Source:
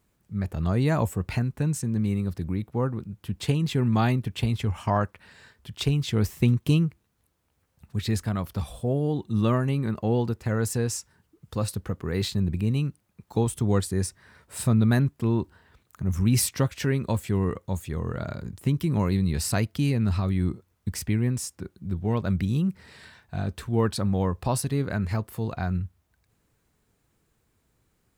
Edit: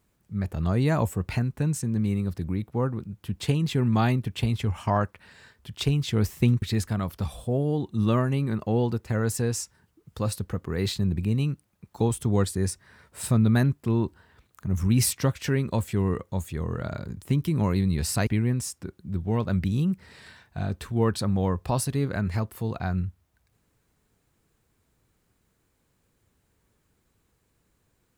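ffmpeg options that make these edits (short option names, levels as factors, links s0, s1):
-filter_complex "[0:a]asplit=3[s0][s1][s2];[s0]atrim=end=6.622[s3];[s1]atrim=start=7.978:end=19.632[s4];[s2]atrim=start=21.038[s5];[s3][s4]acrossfade=d=0.004:c1=hsin:c2=hsin[s6];[s6][s5]acrossfade=d=0.004:c1=hsin:c2=hsin"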